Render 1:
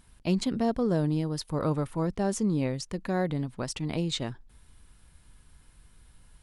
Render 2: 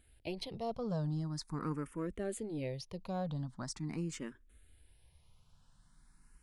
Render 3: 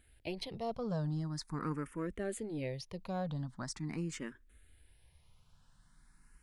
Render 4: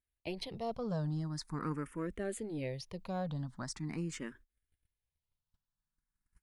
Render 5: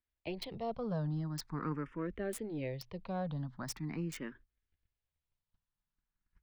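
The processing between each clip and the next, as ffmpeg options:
-filter_complex "[0:a]asoftclip=type=tanh:threshold=0.112,asplit=2[s0][s1];[s1]afreqshift=0.43[s2];[s0][s2]amix=inputs=2:normalize=1,volume=0.531"
-af "equalizer=f=1800:t=o:w=0.87:g=4.5"
-af "agate=range=0.0447:threshold=0.00158:ratio=16:detection=peak"
-filter_complex "[0:a]bandreject=f=60:t=h:w=6,bandreject=f=120:t=h:w=6,acrossover=split=280|830|4600[s0][s1][s2][s3];[s3]acrusher=bits=6:mix=0:aa=0.000001[s4];[s0][s1][s2][s4]amix=inputs=4:normalize=0"

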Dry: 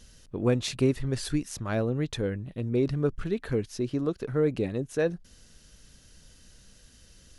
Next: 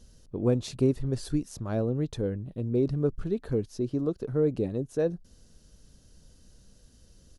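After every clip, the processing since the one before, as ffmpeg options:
-af "firequalizer=gain_entry='entry(440,0);entry(2000,-13);entry(4400,-6)':delay=0.05:min_phase=1"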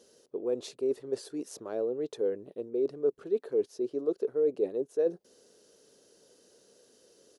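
-af "areverse,acompressor=threshold=0.0251:ratio=6,areverse,highpass=f=420:t=q:w=3.5"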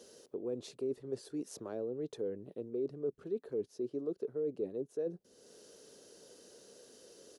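-filter_complex "[0:a]acrossover=split=220[s0][s1];[s1]acompressor=threshold=0.00224:ratio=2[s2];[s0][s2]amix=inputs=2:normalize=0,volume=1.58"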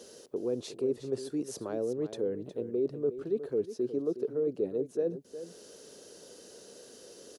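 -af "aecho=1:1:363:0.251,volume=2"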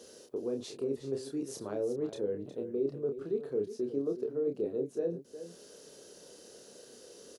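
-filter_complex "[0:a]asplit=2[s0][s1];[s1]adelay=29,volume=0.596[s2];[s0][s2]amix=inputs=2:normalize=0,volume=0.708"

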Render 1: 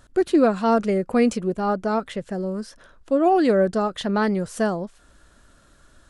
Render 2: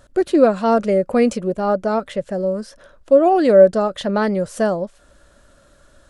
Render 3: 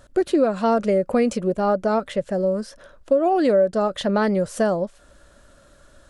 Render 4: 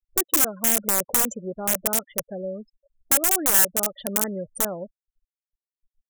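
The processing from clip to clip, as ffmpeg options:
-af "equalizer=f=570:w=4.8:g=10.5,volume=1.19"
-af "acompressor=threshold=0.178:ratio=5"
-af "afftfilt=real='re*gte(hypot(re,im),0.0562)':imag='im*gte(hypot(re,im),0.0562)':win_size=1024:overlap=0.75,aeval=exprs='(mod(4.22*val(0)+1,2)-1)/4.22':c=same,aexciter=amount=7.5:drive=7.6:freq=6200,volume=0.316"

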